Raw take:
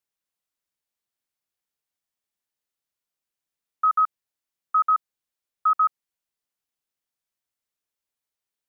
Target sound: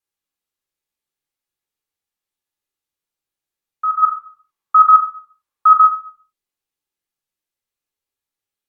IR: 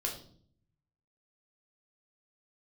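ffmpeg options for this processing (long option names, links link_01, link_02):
-filter_complex "[0:a]asplit=3[link_01][link_02][link_03];[link_01]afade=type=out:start_time=4.02:duration=0.02[link_04];[link_02]equalizer=frequency=1100:width_type=o:width=0.88:gain=12,afade=type=in:start_time=4.02:duration=0.02,afade=type=out:start_time=5.84:duration=0.02[link_05];[link_03]afade=type=in:start_time=5.84:duration=0.02[link_06];[link_04][link_05][link_06]amix=inputs=3:normalize=0[link_07];[1:a]atrim=start_sample=2205,afade=type=out:start_time=0.41:duration=0.01,atrim=end_sample=18522,asetrate=34839,aresample=44100[link_08];[link_07][link_08]afir=irnorm=-1:irlink=0,volume=-2.5dB"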